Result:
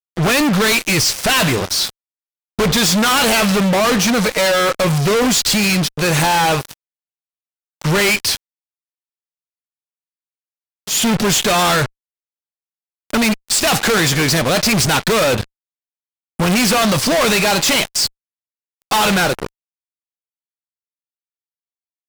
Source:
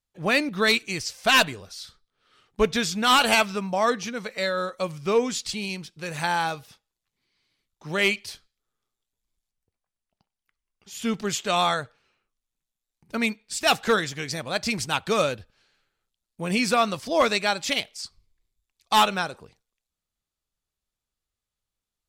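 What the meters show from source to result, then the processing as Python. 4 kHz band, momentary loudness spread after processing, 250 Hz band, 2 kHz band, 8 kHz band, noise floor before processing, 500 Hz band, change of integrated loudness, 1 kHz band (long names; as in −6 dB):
+9.5 dB, 7 LU, +12.0 dB, +8.0 dB, +15.5 dB, below −85 dBFS, +8.0 dB, +9.0 dB, +6.5 dB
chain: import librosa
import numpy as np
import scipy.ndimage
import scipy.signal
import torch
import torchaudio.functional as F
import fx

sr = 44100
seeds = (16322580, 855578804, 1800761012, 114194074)

y = fx.hum_notches(x, sr, base_hz=50, count=2)
y = fx.fuzz(y, sr, gain_db=46.0, gate_db=-45.0)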